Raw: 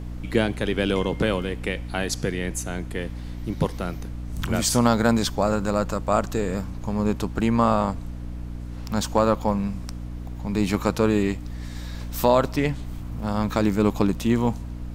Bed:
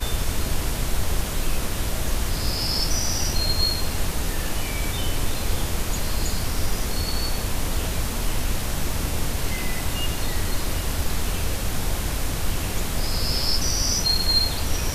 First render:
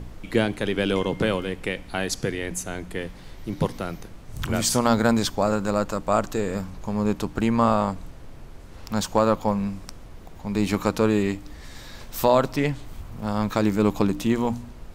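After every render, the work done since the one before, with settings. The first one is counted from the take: de-hum 60 Hz, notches 5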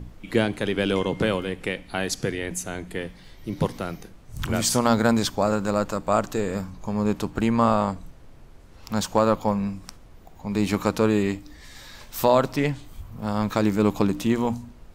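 noise print and reduce 6 dB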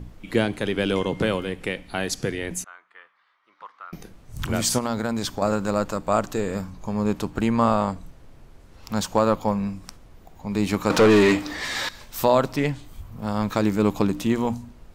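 2.64–3.93 ladder band-pass 1300 Hz, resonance 70%; 4.78–5.42 compressor 3:1, threshold -23 dBFS; 10.9–11.89 overdrive pedal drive 28 dB, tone 2800 Hz, clips at -7 dBFS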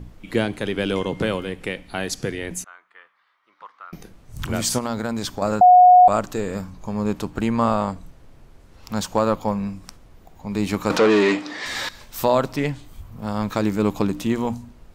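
5.61–6.08 bleep 726 Hz -6.5 dBFS; 10.97–11.66 BPF 210–6500 Hz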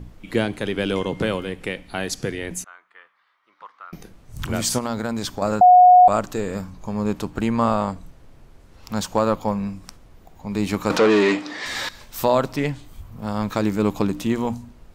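nothing audible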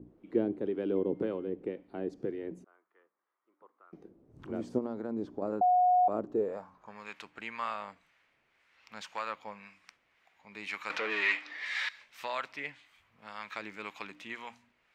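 band-pass sweep 350 Hz -> 2200 Hz, 6.33–7.01; harmonic tremolo 1.9 Hz, depth 50%, crossover 700 Hz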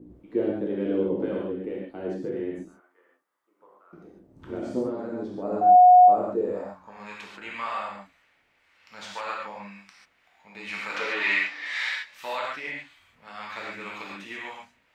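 non-linear reverb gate 0.17 s flat, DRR -4.5 dB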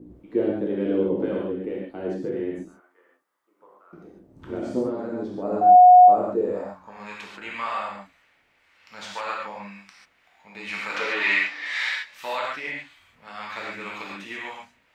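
gain +2.5 dB

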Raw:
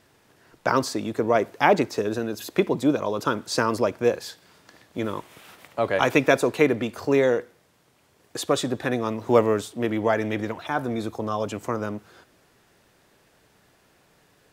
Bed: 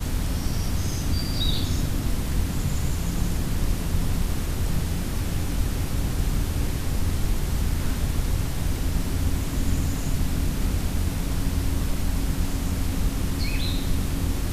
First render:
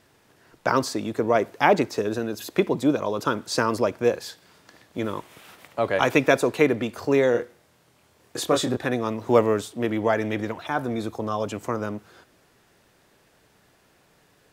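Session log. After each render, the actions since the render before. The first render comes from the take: 7.32–8.77 doubler 25 ms -4 dB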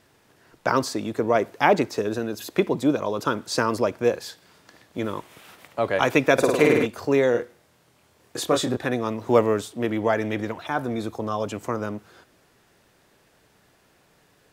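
6.33–6.86 flutter echo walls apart 9 m, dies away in 1.3 s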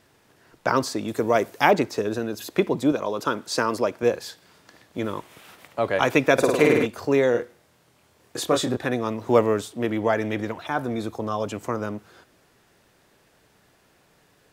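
1.08–1.71 high shelf 5100 Hz +11 dB; 2.92–4.03 HPF 190 Hz 6 dB/oct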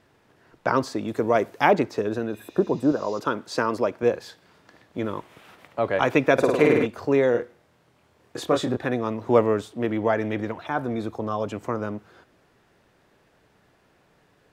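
2.36–3.16 spectral repair 1800–7500 Hz both; high shelf 4400 Hz -11.5 dB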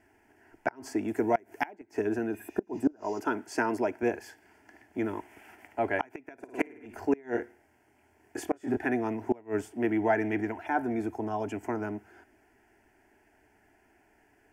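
fixed phaser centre 780 Hz, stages 8; flipped gate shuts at -14 dBFS, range -28 dB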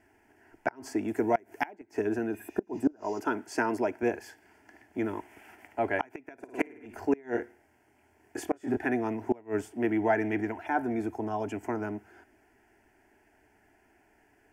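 nothing audible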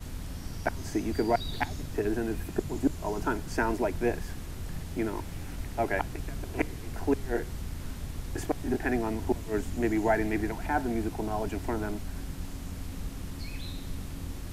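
add bed -12.5 dB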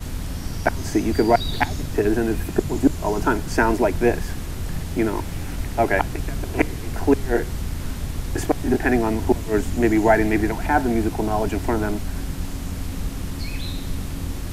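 gain +9.5 dB

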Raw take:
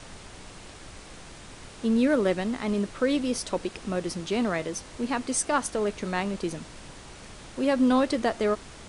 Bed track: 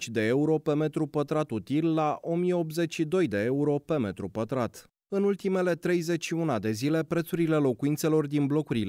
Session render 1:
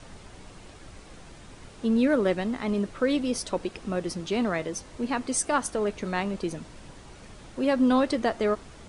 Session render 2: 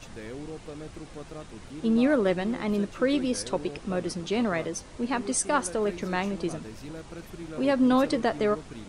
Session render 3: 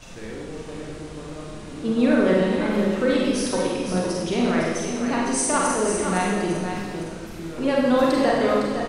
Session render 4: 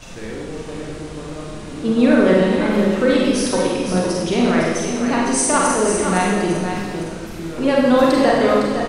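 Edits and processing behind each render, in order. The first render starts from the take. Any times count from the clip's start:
denoiser 6 dB, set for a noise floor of -46 dBFS
add bed track -14.5 dB
echo 0.508 s -7.5 dB; Schroeder reverb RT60 1.3 s, combs from 33 ms, DRR -3.5 dB
gain +5 dB

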